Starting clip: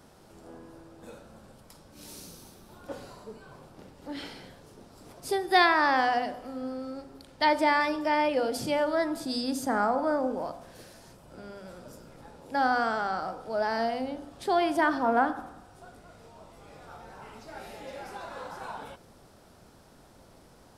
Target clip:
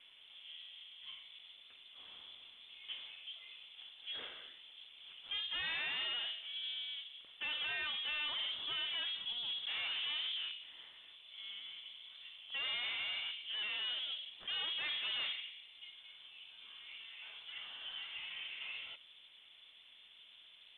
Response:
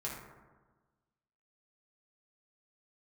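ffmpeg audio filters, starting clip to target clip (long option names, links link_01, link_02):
-filter_complex "[0:a]asettb=1/sr,asplit=3[link_01][link_02][link_03];[link_01]atrim=end=7.534[link_04];[link_02]atrim=start=7.53:end=9.33,asetpts=PTS-STARTPTS,afade=type=in:duration=0.004:curve=qsin,afade=type=out:start_time=1.796:duration=0.004:curve=qsin,equalizer=frequency=2400:width=2:gain=6.5[link_05];[link_03]atrim=start=9.326[link_06];[link_04][link_05]acrossfade=duration=0.004:curve1=hsin:curve2=qsin[link_07];[link_07][link_06]acrossfade=duration=0.004:curve1=qsin:curve2=hsin,aeval=exprs='(tanh(50.1*val(0)+0.3)-tanh(0.3))/50.1':channel_layout=same,lowpass=frequency=3100:width_type=q:width=0.5098,lowpass=frequency=3100:width_type=q:width=0.6013,lowpass=frequency=3100:width_type=q:width=0.9,lowpass=frequency=3100:width_type=q:width=2.563,afreqshift=-3600,volume=-4dB" -ar 44100 -c:a mp2 -b:a 64k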